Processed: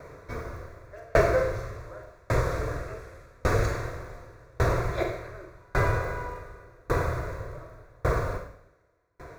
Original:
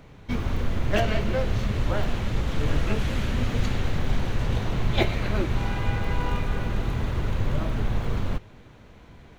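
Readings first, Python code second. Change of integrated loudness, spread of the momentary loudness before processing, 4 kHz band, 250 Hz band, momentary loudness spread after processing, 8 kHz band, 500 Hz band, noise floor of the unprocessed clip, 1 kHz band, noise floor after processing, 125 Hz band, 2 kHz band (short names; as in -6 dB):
-1.5 dB, 4 LU, -11.0 dB, -8.0 dB, 20 LU, n/a, +2.5 dB, -49 dBFS, +1.0 dB, -60 dBFS, -5.0 dB, 0.0 dB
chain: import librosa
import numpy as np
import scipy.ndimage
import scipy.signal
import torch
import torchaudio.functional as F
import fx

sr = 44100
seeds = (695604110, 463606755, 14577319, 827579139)

y = fx.highpass(x, sr, hz=86.0, slope=6)
y = fx.peak_eq(y, sr, hz=790.0, db=10.5, octaves=0.87)
y = fx.fixed_phaser(y, sr, hz=820.0, stages=6)
y = fx.rev_schroeder(y, sr, rt60_s=0.89, comb_ms=33, drr_db=0.5)
y = fx.tremolo_decay(y, sr, direction='decaying', hz=0.87, depth_db=36)
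y = y * librosa.db_to_amplitude(8.0)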